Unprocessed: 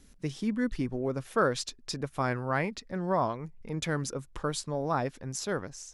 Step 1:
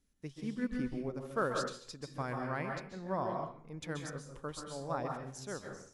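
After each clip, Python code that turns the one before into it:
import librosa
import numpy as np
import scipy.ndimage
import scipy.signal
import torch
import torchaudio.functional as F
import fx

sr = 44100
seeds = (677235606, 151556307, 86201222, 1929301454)

y = fx.rev_plate(x, sr, seeds[0], rt60_s=0.64, hf_ratio=0.7, predelay_ms=120, drr_db=1.5)
y = fx.upward_expand(y, sr, threshold_db=-48.0, expansion=1.5)
y = y * librosa.db_to_amplitude(-7.0)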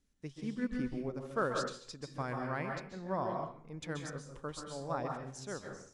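y = scipy.signal.sosfilt(scipy.signal.butter(4, 9600.0, 'lowpass', fs=sr, output='sos'), x)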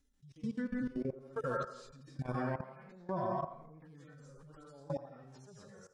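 y = fx.hpss_only(x, sr, part='harmonic')
y = fx.level_steps(y, sr, step_db=20)
y = fx.echo_wet_bandpass(y, sr, ms=84, feedback_pct=46, hz=740.0, wet_db=-11.0)
y = y * librosa.db_to_amplitude(5.0)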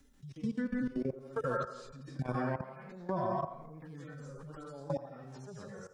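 y = fx.band_squash(x, sr, depth_pct=40)
y = y * librosa.db_to_amplitude(2.5)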